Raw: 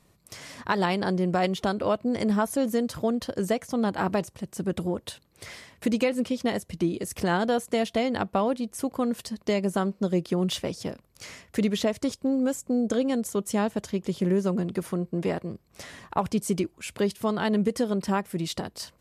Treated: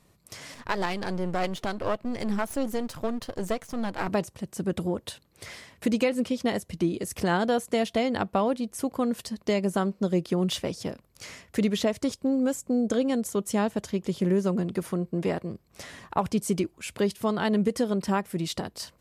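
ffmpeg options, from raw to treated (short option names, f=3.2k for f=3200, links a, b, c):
-filter_complex "[0:a]asettb=1/sr,asplit=3[a][b][c];[a]atrim=end=0.544[d];[b]atrim=start=0.54:end=4.08,asetpts=PTS-STARTPTS,afade=t=in:d=0.004:c=qsin,afade=t=out:st=3.536:d=0.004:c=qsin,aeval=exprs='if(lt(val(0),0),0.251*val(0),val(0))':c=same[e];[c]atrim=start=4.076[f];[d][e]acrossfade=d=0.004:c1=hsin:c2=qsin[g];[g][f]acrossfade=d=0.004:c1=qsin:c2=hsin"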